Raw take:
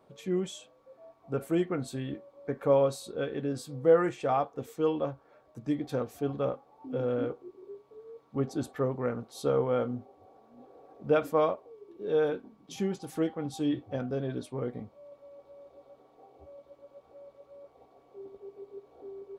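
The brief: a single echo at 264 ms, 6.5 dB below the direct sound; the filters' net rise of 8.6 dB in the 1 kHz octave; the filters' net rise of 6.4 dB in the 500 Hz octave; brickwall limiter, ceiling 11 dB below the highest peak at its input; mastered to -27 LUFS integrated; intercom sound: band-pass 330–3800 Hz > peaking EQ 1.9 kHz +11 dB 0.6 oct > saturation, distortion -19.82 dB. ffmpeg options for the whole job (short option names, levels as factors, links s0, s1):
-af "equalizer=f=500:t=o:g=6,equalizer=f=1000:t=o:g=8,alimiter=limit=0.158:level=0:latency=1,highpass=330,lowpass=3800,equalizer=f=1900:t=o:w=0.6:g=11,aecho=1:1:264:0.473,asoftclip=threshold=0.133,volume=1.41"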